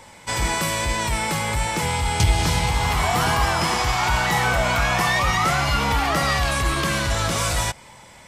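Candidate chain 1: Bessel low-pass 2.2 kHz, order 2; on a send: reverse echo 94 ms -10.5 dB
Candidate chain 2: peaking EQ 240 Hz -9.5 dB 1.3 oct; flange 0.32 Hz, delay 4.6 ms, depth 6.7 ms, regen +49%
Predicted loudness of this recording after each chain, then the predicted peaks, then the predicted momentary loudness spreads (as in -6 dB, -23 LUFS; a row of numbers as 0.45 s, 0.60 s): -22.5 LUFS, -25.5 LUFS; -6.5 dBFS, -12.0 dBFS; 4 LU, 4 LU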